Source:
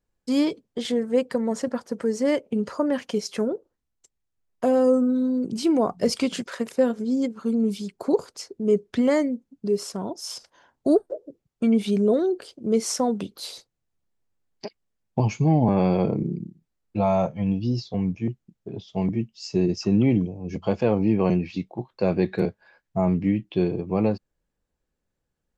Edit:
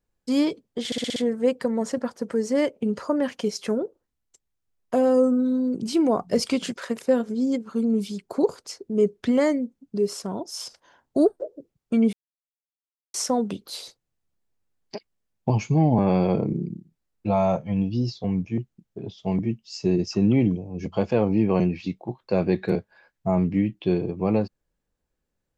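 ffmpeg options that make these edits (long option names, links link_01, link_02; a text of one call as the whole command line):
ffmpeg -i in.wav -filter_complex "[0:a]asplit=8[link_01][link_02][link_03][link_04][link_05][link_06][link_07][link_08];[link_01]atrim=end=0.922[link_09];[link_02]atrim=start=0.858:end=0.922[link_10];[link_03]atrim=start=0.858:end=0.922[link_11];[link_04]atrim=start=0.858:end=0.922[link_12];[link_05]atrim=start=0.858:end=0.922[link_13];[link_06]atrim=start=0.858:end=11.83,asetpts=PTS-STARTPTS,afade=type=out:start_time=10.968:duration=0.004:curve=hsin[link_14];[link_07]atrim=start=11.83:end=12.84,asetpts=PTS-STARTPTS,volume=0[link_15];[link_08]atrim=start=12.84,asetpts=PTS-STARTPTS,afade=type=in:duration=0.004:curve=hsin[link_16];[link_09][link_10]acrossfade=duration=0.004:curve1=hsin:curve2=hsin[link_17];[link_17][link_11]acrossfade=duration=0.004:curve1=hsin:curve2=hsin[link_18];[link_18][link_12]acrossfade=duration=0.004:curve1=hsin:curve2=hsin[link_19];[link_19][link_13]acrossfade=duration=0.004:curve1=hsin:curve2=hsin[link_20];[link_14][link_15][link_16]concat=n=3:v=0:a=1[link_21];[link_20][link_21]acrossfade=duration=0.004:curve1=hsin:curve2=hsin" out.wav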